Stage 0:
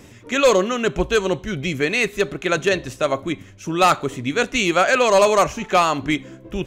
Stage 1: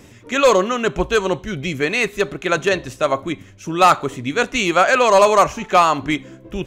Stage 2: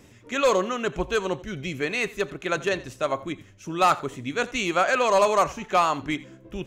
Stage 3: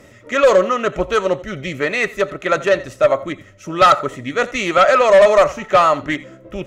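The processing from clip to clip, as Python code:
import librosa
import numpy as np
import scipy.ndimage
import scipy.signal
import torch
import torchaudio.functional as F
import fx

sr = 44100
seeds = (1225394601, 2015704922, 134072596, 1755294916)

y1 = fx.dynamic_eq(x, sr, hz=1000.0, q=1.2, threshold_db=-30.0, ratio=4.0, max_db=5)
y2 = y1 + 10.0 ** (-19.5 / 20.0) * np.pad(y1, (int(86 * sr / 1000.0), 0))[:len(y1)]
y2 = F.gain(torch.from_numpy(y2), -7.5).numpy()
y3 = fx.small_body(y2, sr, hz=(590.0, 1300.0, 1900.0), ring_ms=30, db=13)
y3 = fx.cheby_harmonics(y3, sr, harmonics=(5,), levels_db=(-15,), full_scale_db=0.0)
y3 = fx.doppler_dist(y3, sr, depth_ms=0.1)
y3 = F.gain(torch.from_numpy(y3), -1.0).numpy()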